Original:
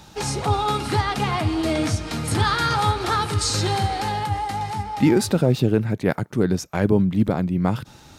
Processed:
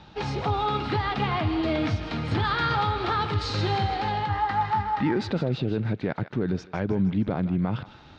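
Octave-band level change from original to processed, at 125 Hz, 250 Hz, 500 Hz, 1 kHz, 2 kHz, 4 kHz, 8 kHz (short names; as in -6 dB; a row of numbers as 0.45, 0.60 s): -4.5 dB, -5.5 dB, -6.0 dB, -2.5 dB, -3.0 dB, -5.5 dB, under -20 dB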